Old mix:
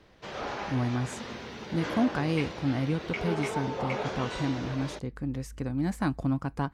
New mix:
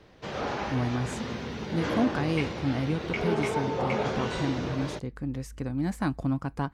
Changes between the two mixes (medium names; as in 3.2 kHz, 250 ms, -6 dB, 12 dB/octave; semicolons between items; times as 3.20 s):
background: add bass shelf 320 Hz +8 dB; reverb: on, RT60 1.6 s